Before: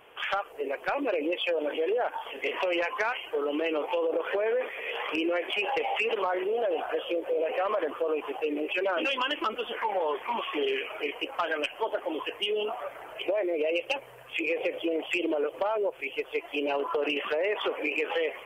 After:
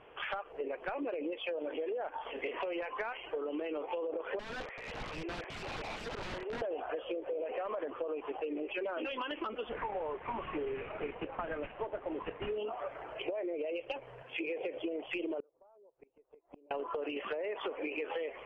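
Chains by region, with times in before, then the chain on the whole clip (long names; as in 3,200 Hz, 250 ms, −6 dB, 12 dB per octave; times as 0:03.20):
0:04.39–0:06.62: band-pass filter 690–5,200 Hz + high-frequency loss of the air 270 metres + wrap-around overflow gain 31.5 dB
0:09.69–0:12.58: variable-slope delta modulation 16 kbit/s + high-frequency loss of the air 230 metres
0:14.22–0:14.77: high-pass filter 130 Hz + notch filter 1,200 Hz, Q 8.5
0:15.40–0:16.71: drawn EQ curve 1,000 Hz 0 dB, 3,700 Hz −25 dB, 6,500 Hz +1 dB + gate with flip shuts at −34 dBFS, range −33 dB
whole clip: low-pass filter 4,000 Hz 12 dB per octave; spectral tilt −2 dB per octave; downward compressor, threshold −32 dBFS; level −2.5 dB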